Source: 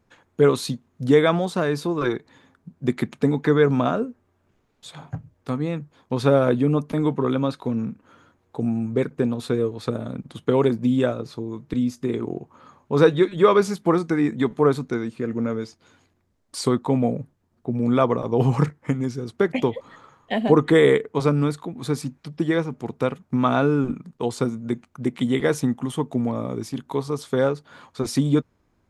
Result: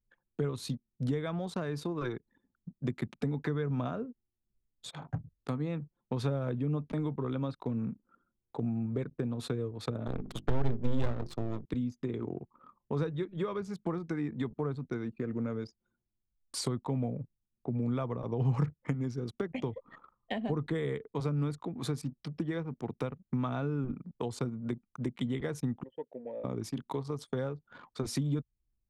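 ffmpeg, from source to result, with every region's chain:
-filter_complex "[0:a]asettb=1/sr,asplit=3[a][b][c];[a]atrim=end=10.074[d];[b]atrim=start=10.07:end=11.65,asetpts=PTS-STARTPTS,afade=t=in:d=0.004:c=qsin,afade=t=out:st=1.576:d=0.004:c=qsin,aeval=exprs='max(val(0),0)':c=same,bandreject=f=50:t=h:w=6,bandreject=f=100:t=h:w=6,bandreject=f=150:t=h:w=6,bandreject=f=200:t=h:w=6,bandreject=f=250:t=h:w=6,bandreject=f=300:t=h:w=6,bandreject=f=350:t=h:w=6,bandreject=f=400:t=h:w=6,acontrast=48[e];[c]atrim=start=11.646[f];[d][e]acrossfade=d=0.004:c1=hsin:c2=qsin[g];[g][f]acrossfade=d=0.004:c1=qsin:c2=hsin,asettb=1/sr,asplit=3[h][i][j];[h]atrim=end=25.834[k];[i]atrim=start=25.83:end=26.44,asetpts=PTS-STARTPTS,afade=t=in:d=0.004:c=qsin,afade=t=out:st=0.606:d=0.004:c=qsin,asplit=3[l][m][n];[l]bandpass=f=530:t=q:w=8,volume=0dB[o];[m]bandpass=f=1.84k:t=q:w=8,volume=-6dB[p];[n]bandpass=f=2.48k:t=q:w=8,volume=-9dB[q];[o][p][q]amix=inputs=3:normalize=0,equalizer=f=910:w=6.4:g=13.5[r];[j]atrim=start=26.436[s];[k][r]acrossfade=d=0.004:c1=hsin:c2=qsin[t];[t][s]acrossfade=d=0.004:c1=qsin:c2=hsin,acrossover=split=130[u][v];[v]acompressor=threshold=-29dB:ratio=10[w];[u][w]amix=inputs=2:normalize=0,anlmdn=0.0631,volume=-3.5dB"

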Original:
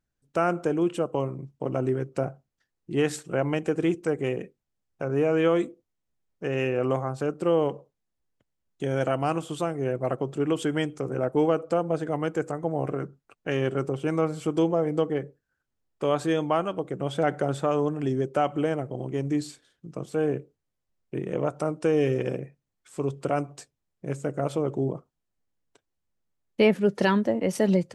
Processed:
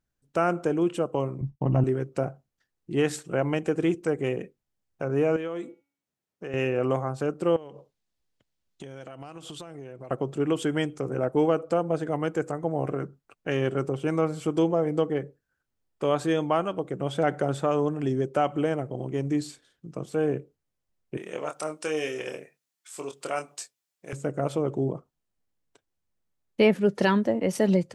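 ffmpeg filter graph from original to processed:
-filter_complex "[0:a]asettb=1/sr,asplit=3[a][b][c];[a]atrim=end=1.414[d];[b]atrim=start=1.41:end=1.84,asetpts=PTS-STARTPTS,afade=t=in:d=0.004:c=qsin,afade=t=out:st=0.426:d=0.004:c=qsin,agate=range=-33dB:threshold=-54dB:ratio=3:release=100:detection=peak,aemphasis=mode=reproduction:type=bsi,aecho=1:1:1.1:0.49,atrim=end_sample=18963[e];[c]atrim=start=1.836[f];[d][e]acrossfade=d=0.004:c1=hsin:c2=qsin[g];[g][f]acrossfade=d=0.004:c1=qsin:c2=hsin,asettb=1/sr,asplit=3[h][i][j];[h]atrim=end=5.364[k];[i]atrim=start=5.36:end=6.54,asetpts=PTS-STARTPTS,afade=t=in:d=0.004:c=qsin,afade=t=out:st=1.176:d=0.004:c=qsin,highpass=140,acompressor=threshold=-34dB:ratio=2.5:attack=3.2:release=140:knee=1:detection=peak,bandreject=f=280.7:t=h:w=4,bandreject=f=561.4:t=h:w=4,bandreject=f=842.1:t=h:w=4,bandreject=f=1.1228k:t=h:w=4,bandreject=f=1.4035k:t=h:w=4,bandreject=f=1.6842k:t=h:w=4,bandreject=f=1.9649k:t=h:w=4,bandreject=f=2.2456k:t=h:w=4,bandreject=f=2.5263k:t=h:w=4,bandreject=f=2.807k:t=h:w=4,bandreject=f=3.0877k:t=h:w=4,bandreject=f=3.3684k:t=h:w=4,bandreject=f=3.6491k:t=h:w=4,bandreject=f=3.9298k:t=h:w=4,bandreject=f=4.2105k:t=h:w=4,bandreject=f=4.4912k:t=h:w=4,bandreject=f=4.7719k:t=h:w=4[l];[j]atrim=start=6.536[m];[k][l]acrossfade=d=0.004:c1=hsin:c2=qsin[n];[n][m]acrossfade=d=0.004:c1=qsin:c2=hsin,asettb=1/sr,asplit=3[o][p][q];[o]atrim=end=7.564[r];[p]atrim=start=7.56:end=10.11,asetpts=PTS-STARTPTS,afade=t=in:d=0.004:c=qsin,afade=t=out:st=2.546:d=0.004:c=qsin,equalizer=f=4.1k:t=o:w=1.6:g=7,acompressor=threshold=-36dB:ratio=20:attack=3.2:release=140:knee=1:detection=peak[s];[q]atrim=start=10.106[t];[r][s]acrossfade=d=0.004:c1=hsin:c2=qsin[u];[u][t]acrossfade=d=0.004:c1=qsin:c2=hsin,asettb=1/sr,asplit=3[v][w][x];[v]atrim=end=21.174[y];[w]atrim=start=21.17:end=24.13,asetpts=PTS-STARTPTS,afade=t=in:d=0.004:c=qsin,afade=t=out:st=2.956:d=0.004:c=qsin,highpass=f=1k:p=1,highshelf=f=2.7k:g=8,asplit=2[z][aa];[aa]adelay=26,volume=-6.5dB[ab];[z][ab]amix=inputs=2:normalize=0,atrim=end_sample=130536[ac];[x]atrim=start=24.126[ad];[y][ac]acrossfade=d=0.004:c1=hsin:c2=qsin[ae];[ae][ad]acrossfade=d=0.004:c1=qsin:c2=hsin"

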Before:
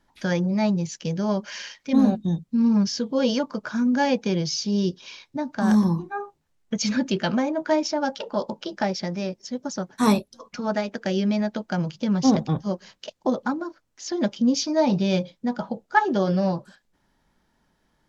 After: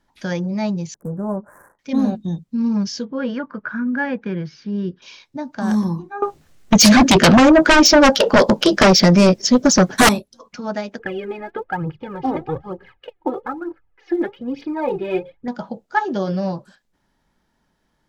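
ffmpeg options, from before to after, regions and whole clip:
-filter_complex "[0:a]asettb=1/sr,asplit=3[a][b][c];[a]atrim=end=0.944[d];[b]atrim=start=0.94:end=1.79,asetpts=PTS-STARTPTS,afade=t=in:d=0.004:c=qsin,afade=t=out:st=0.846:d=0.004:c=qsin,adynamicsmooth=sensitivity=7.5:basefreq=680,asuperstop=centerf=3500:order=8:qfactor=0.5[e];[c]atrim=start=1.786[f];[d][e]acrossfade=d=0.004:c1=hsin:c2=qsin[g];[g][f]acrossfade=d=0.004:c1=qsin:c2=hsin,asettb=1/sr,asplit=3[h][i][j];[h]atrim=end=3.054[k];[i]atrim=start=3.05:end=5.02,asetpts=PTS-STARTPTS,afade=t=in:d=0.004:c=qsin,afade=t=out:st=1.966:d=0.004:c=qsin,lowpass=f=1.6k:t=q:w=2.8,equalizer=f=730:t=o:w=1.3:g=-7.5[l];[j]atrim=start=5.016[m];[k][l]acrossfade=d=0.004:c1=hsin:c2=qsin[n];[n][m]acrossfade=d=0.004:c1=qsin:c2=hsin,asettb=1/sr,asplit=3[o][p][q];[o]atrim=end=6.224[r];[p]atrim=start=6.22:end=10.09,asetpts=PTS-STARTPTS,afade=t=in:d=0.004:c=qsin,afade=t=out:st=3.866:d=0.004:c=qsin,equalizer=f=910:t=o:w=0.21:g=-8,aeval=exprs='0.501*sin(PI/2*6.31*val(0)/0.501)':c=same[s];[q]atrim=start=10.086[t];[r][s]acrossfade=d=0.004:c1=hsin:c2=qsin[u];[u][t]acrossfade=d=0.004:c1=qsin:c2=hsin,asettb=1/sr,asplit=3[v][w][x];[v]atrim=end=10.994[y];[w]atrim=start=10.99:end=15.48,asetpts=PTS-STARTPTS,afade=t=in:d=0.004:c=qsin,afade=t=out:st=4.486:d=0.004:c=qsin,lowpass=f=2.3k:w=0.5412,lowpass=f=2.3k:w=1.3066,aecho=1:1:2.4:0.74,atrim=end_sample=198009,aphaser=in_gain=1:out_gain=1:delay=3.4:decay=0.67:speed=1.1:type=triangular[z];[x]atrim=start=15.476[aa];[y][z]acrossfade=d=0.004:c1=hsin:c2=qsin[ab];[ab][aa]acrossfade=d=0.004:c1=qsin:c2=hsin"

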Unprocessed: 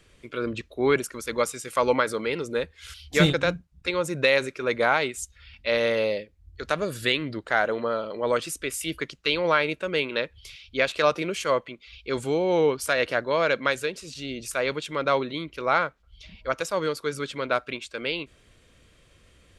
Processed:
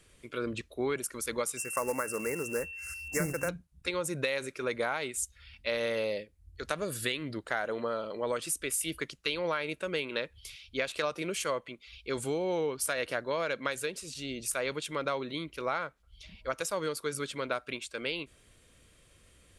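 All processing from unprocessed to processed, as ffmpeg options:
-filter_complex "[0:a]asettb=1/sr,asplit=3[a][b][c];[a]atrim=end=1.574[d];[b]atrim=start=1.57:end=3.49,asetpts=PTS-STARTPTS,afade=t=in:d=0.004:c=qsin,afade=t=out:st=1.916:d=0.004:c=qsin,acrusher=bits=3:mode=log:mix=0:aa=0.000001,asuperstop=centerf=3300:order=8:qfactor=1.1,aeval=exprs='val(0)+0.0158*sin(2*PI*2700*n/s)':c=same[e];[c]atrim=start=3.486[f];[d][e]acrossfade=d=0.004:c1=hsin:c2=qsin[g];[g][f]acrossfade=d=0.004:c1=qsin:c2=hsin,equalizer=f=10k:t=o:w=0.83:g=10.5,acompressor=threshold=-23dB:ratio=6,volume=-4.5dB"

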